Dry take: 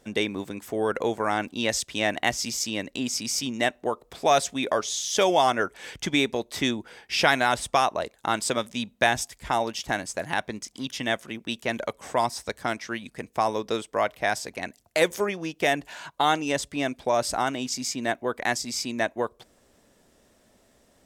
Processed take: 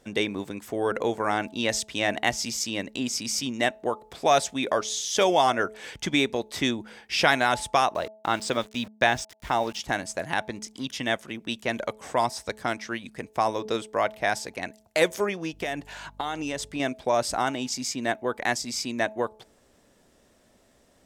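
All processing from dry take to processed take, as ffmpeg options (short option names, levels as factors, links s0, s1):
-filter_complex "[0:a]asettb=1/sr,asplit=3[s0][s1][s2];[s0]atrim=end=7.944[s3];[s1]atrim=start=7.94:end=9.79,asetpts=PTS-STARTPTS,afade=t=in:d=0.004:c=qsin,afade=t=out:st=1.846:d=0.004:c=qsin,lowpass=6300,aeval=exprs='val(0)*gte(abs(val(0)),0.00891)':c=same[s4];[s2]atrim=start=9.786[s5];[s3][s4]acrossfade=d=0.004:c1=hsin:c2=qsin[s6];[s6][s5]acrossfade=d=0.004:c1=qsin:c2=hsin,asettb=1/sr,asplit=3[s7][s8][s9];[s7]atrim=end=15.534[s10];[s8]atrim=start=15.53:end=16.8,asetpts=PTS-STARTPTS,afade=t=in:d=0.004:c=qsin,afade=t=out:st=1.266:d=0.004:c=qsin,acompressor=threshold=0.0501:ratio=5:attack=3.2:release=140:knee=1:detection=peak,aeval=exprs='val(0)+0.00251*(sin(2*PI*50*n/s)+sin(2*PI*2*50*n/s)/2+sin(2*PI*3*50*n/s)/3+sin(2*PI*4*50*n/s)/4+sin(2*PI*5*50*n/s)/5)':c=same[s11];[s9]atrim=start=16.796[s12];[s10][s11]acrossfade=d=0.004:c1=hsin:c2=qsin[s13];[s13][s12]acrossfade=d=0.004:c1=qsin:c2=hsin,highshelf=f=11000:g=-4,bandreject=f=215.7:t=h:w=4,bandreject=f=431.4:t=h:w=4,bandreject=f=647.1:t=h:w=4,bandreject=f=862.8:t=h:w=4"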